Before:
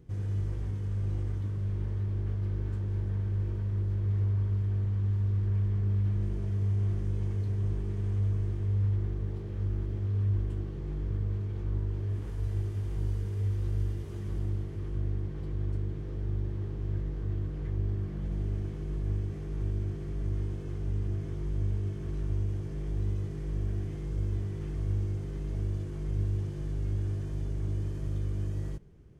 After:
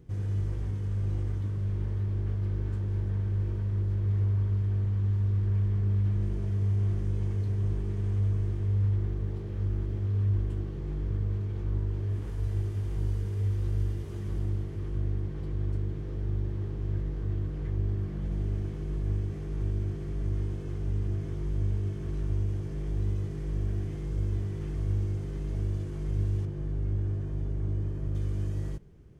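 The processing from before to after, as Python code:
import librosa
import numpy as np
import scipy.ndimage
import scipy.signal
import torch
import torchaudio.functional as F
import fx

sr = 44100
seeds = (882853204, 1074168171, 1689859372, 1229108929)

y = fx.high_shelf(x, sr, hz=2700.0, db=-12.0, at=(26.45, 28.15))
y = y * 10.0 ** (1.5 / 20.0)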